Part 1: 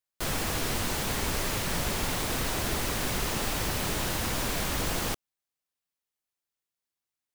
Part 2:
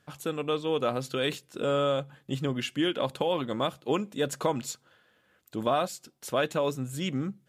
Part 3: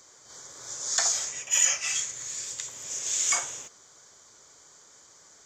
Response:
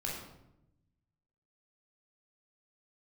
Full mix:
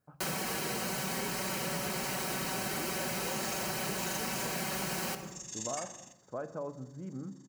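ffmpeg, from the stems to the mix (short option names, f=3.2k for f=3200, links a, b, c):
-filter_complex "[0:a]highpass=150,bandreject=f=3.5k:w=6.2,aecho=1:1:5.3:0.87,volume=-2dB,asplit=2[a][b];[b]volume=-8dB[c];[1:a]lowpass=f=1.3k:w=0.5412,lowpass=f=1.3k:w=1.3066,volume=-12dB,asplit=2[d][e];[e]volume=-12.5dB[f];[2:a]aecho=1:1:1.1:0.9,tremolo=f=24:d=0.788,adelay=2450,volume=-12.5dB,asplit=2[g][h];[h]volume=-13dB[i];[3:a]atrim=start_sample=2205[j];[c][f][i]amix=inputs=3:normalize=0[k];[k][j]afir=irnorm=-1:irlink=0[l];[a][d][g][l]amix=inputs=4:normalize=0,acompressor=threshold=-32dB:ratio=6"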